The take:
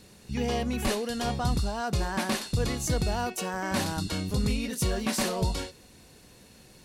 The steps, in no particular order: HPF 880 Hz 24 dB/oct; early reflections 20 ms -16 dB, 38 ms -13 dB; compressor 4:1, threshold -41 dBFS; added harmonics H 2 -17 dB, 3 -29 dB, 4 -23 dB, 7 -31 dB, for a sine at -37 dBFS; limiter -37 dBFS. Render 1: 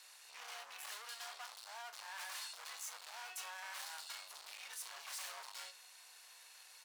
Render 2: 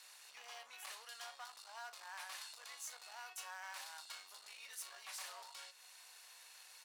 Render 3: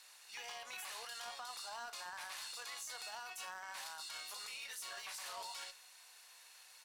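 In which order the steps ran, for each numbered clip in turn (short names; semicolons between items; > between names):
added harmonics > early reflections > limiter > compressor > HPF; compressor > early reflections > added harmonics > limiter > HPF; HPF > limiter > early reflections > added harmonics > compressor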